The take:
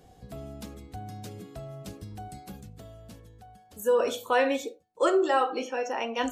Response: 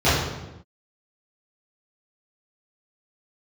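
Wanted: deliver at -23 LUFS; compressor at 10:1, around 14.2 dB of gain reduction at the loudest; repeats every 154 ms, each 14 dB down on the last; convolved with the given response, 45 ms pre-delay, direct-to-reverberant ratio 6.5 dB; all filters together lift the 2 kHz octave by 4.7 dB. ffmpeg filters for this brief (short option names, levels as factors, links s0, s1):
-filter_complex "[0:a]equalizer=f=2000:t=o:g=6,acompressor=threshold=0.0224:ratio=10,aecho=1:1:154|308:0.2|0.0399,asplit=2[s0][s1];[1:a]atrim=start_sample=2205,adelay=45[s2];[s1][s2]afir=irnorm=-1:irlink=0,volume=0.0376[s3];[s0][s3]amix=inputs=2:normalize=0,volume=5.62"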